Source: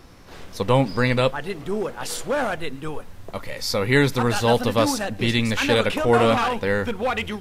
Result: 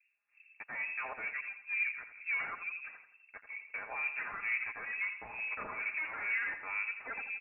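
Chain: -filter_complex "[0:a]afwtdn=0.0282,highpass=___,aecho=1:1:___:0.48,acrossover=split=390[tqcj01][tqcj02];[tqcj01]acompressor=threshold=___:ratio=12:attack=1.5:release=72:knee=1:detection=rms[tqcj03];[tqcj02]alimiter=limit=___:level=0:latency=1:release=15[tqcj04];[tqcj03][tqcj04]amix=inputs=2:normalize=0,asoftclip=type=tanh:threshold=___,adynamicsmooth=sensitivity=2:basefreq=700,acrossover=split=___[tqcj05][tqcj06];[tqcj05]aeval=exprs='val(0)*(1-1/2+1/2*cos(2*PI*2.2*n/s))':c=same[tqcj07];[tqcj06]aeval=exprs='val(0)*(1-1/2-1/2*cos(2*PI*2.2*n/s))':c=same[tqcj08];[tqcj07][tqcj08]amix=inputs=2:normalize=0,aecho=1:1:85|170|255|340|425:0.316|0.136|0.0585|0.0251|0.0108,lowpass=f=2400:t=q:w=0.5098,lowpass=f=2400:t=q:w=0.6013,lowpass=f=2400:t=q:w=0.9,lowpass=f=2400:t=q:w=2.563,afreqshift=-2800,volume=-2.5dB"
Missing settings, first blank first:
210, 5.1, -36dB, -16dB, -24dB, 1200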